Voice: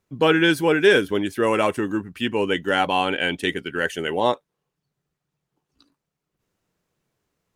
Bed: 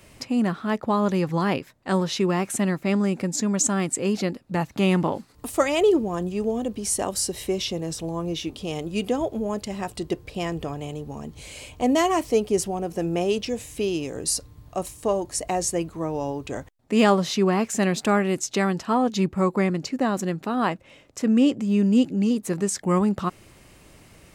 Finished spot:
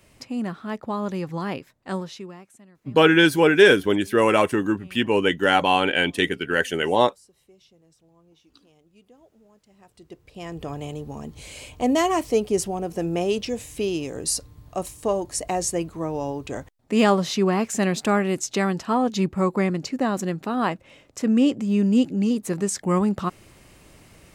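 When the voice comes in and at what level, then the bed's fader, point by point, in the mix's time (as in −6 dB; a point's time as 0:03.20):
2.75 s, +2.0 dB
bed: 0:01.94 −5.5 dB
0:02.68 −29.5 dB
0:09.60 −29.5 dB
0:10.74 0 dB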